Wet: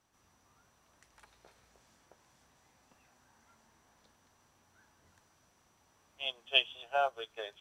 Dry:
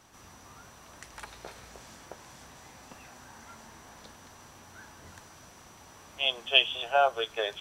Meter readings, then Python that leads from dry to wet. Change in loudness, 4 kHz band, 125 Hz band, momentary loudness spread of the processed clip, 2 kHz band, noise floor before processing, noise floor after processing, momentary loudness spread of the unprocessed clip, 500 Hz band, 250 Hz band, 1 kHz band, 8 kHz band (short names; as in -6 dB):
-7.0 dB, -7.0 dB, -15.5 dB, 13 LU, -7.0 dB, -53 dBFS, -70 dBFS, 22 LU, -7.5 dB, -12.5 dB, -7.0 dB, -15.5 dB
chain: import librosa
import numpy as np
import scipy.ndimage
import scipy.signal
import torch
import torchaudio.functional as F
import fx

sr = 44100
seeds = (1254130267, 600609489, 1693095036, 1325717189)

y = fx.upward_expand(x, sr, threshold_db=-41.0, expansion=1.5)
y = y * librosa.db_to_amplitude(-5.0)